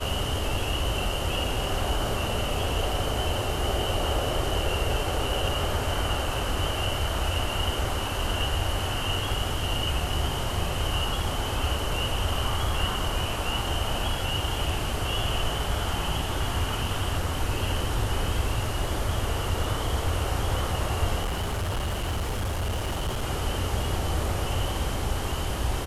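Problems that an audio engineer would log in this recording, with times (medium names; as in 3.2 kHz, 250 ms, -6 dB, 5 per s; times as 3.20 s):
21.22–23.23 s: clipped -24.5 dBFS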